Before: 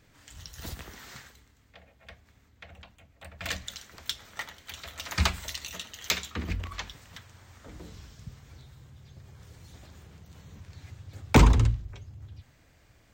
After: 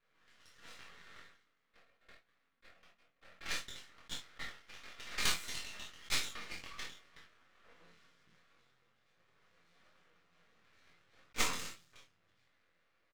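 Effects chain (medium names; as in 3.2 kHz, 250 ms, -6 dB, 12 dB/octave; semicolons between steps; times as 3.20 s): level-controlled noise filter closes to 1.4 kHz, open at -24 dBFS; high-pass 150 Hz 12 dB/octave; differentiator; band-stop 890 Hz, Q 5.6; reverberation, pre-delay 3 ms, DRR -2.5 dB; flange 1.6 Hz, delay 6.6 ms, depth 5.8 ms, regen -32%; low-pass 2 kHz 6 dB/octave; half-wave rectifier; peaking EQ 690 Hz -3 dB 0.59 oct; doubling 23 ms -4.5 dB; attacks held to a fixed rise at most 560 dB/s; trim +12.5 dB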